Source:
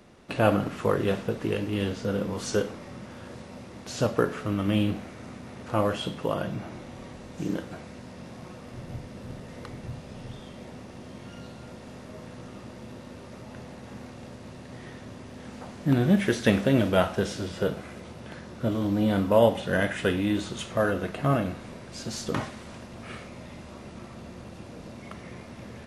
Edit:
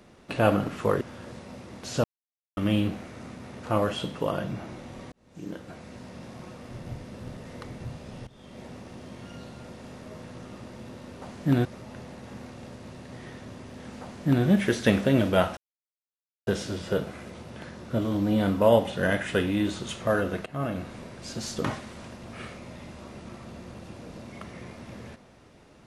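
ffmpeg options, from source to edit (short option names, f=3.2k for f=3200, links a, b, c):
-filter_complex "[0:a]asplit=10[a][b][c][d][e][f][g][h][i][j];[a]atrim=end=1.012[k];[b]atrim=start=3.038:end=4.07,asetpts=PTS-STARTPTS,afade=t=out:st=1.028:d=0.004:c=hsin[l];[c]atrim=start=4.07:end=4.6,asetpts=PTS-STARTPTS,volume=0[m];[d]atrim=start=4.6:end=7.15,asetpts=PTS-STARTPTS,afade=t=in:d=0.004:c=hsin,afade=t=out:st=2.546:d=0.004:c=hsin[n];[e]atrim=start=7.15:end=10.3,asetpts=PTS-STARTPTS,afade=t=in:d=0.87,afade=t=out:st=3.146:d=0.004:c=hsin:silence=0.133352[o];[f]atrim=start=10.3:end=13.252,asetpts=PTS-STARTPTS,afade=t=in:d=0.36:silence=0.133352[p];[g]atrim=start=15.618:end=16.052[q];[h]atrim=start=13.248:end=17.17,asetpts=PTS-STARTPTS,afade=t=out:st=3.918:d=0.004:c=hsin,apad=pad_dur=0.9[r];[i]atrim=start=17.17:end=21.16,asetpts=PTS-STARTPTS,afade=t=in:d=0.004:c=hsin,afade=t=out:st=3.986:d=0.004:c=hsin:silence=0.158489[s];[j]atrim=start=21.16,asetpts=PTS-STARTPTS,afade=t=in:d=0.43:silence=0.158489[t];[l][m][n][o][p]concat=n=5:v=0:a=1[u];[k][u]acrossfade=d=0.004:c1=hsin:c2=hsin[v];[v][q]acrossfade=d=0.004:c1=hsin:c2=hsin[w];[r][s][t]concat=n=3:v=0:a=1[x];[w][x]acrossfade=d=0.004:c1=hsin:c2=hsin"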